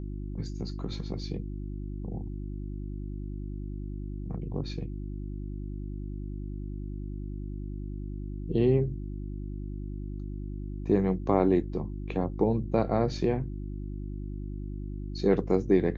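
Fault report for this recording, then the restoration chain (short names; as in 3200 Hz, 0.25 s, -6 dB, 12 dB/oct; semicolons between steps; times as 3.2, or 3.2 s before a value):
hum 50 Hz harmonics 7 -36 dBFS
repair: de-hum 50 Hz, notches 7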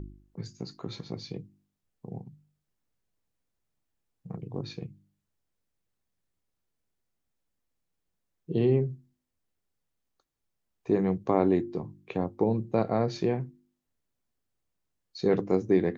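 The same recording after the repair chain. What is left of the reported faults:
none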